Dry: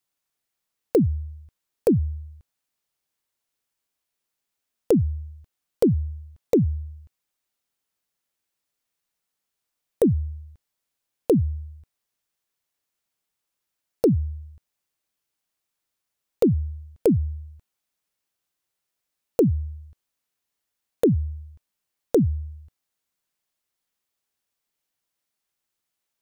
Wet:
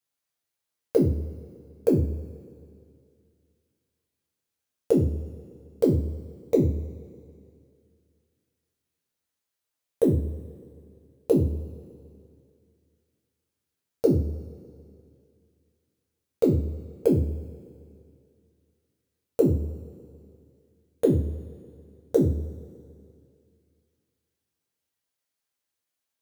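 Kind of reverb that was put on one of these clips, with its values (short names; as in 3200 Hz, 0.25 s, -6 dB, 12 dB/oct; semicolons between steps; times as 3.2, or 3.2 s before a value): two-slope reverb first 0.38 s, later 2.4 s, from -19 dB, DRR -2.5 dB; gain -7 dB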